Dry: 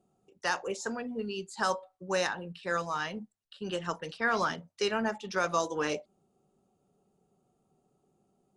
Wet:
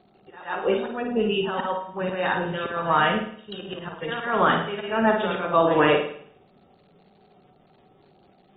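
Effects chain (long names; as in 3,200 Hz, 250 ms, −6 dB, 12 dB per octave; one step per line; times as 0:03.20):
parametric band 710 Hz +4 dB 0.96 octaves
in parallel at −0.5 dB: brickwall limiter −21.5 dBFS, peak gain reduction 8 dB
on the sum: echo ahead of the sound 133 ms −14 dB
volume swells 311 ms
on a send: flutter between parallel walls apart 9.3 metres, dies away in 0.58 s
on the sum: surface crackle 350 per second −55 dBFS
level +5.5 dB
AAC 16 kbit/s 32,000 Hz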